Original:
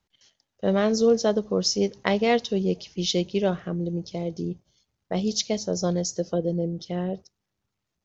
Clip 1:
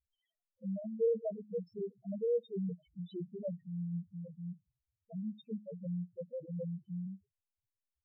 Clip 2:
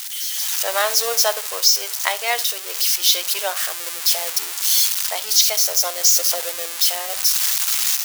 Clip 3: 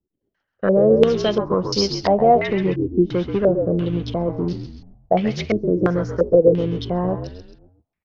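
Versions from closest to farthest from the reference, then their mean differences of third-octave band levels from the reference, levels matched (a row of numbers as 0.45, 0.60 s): 3, 1, 2; 8.5, 14.5, 22.5 dB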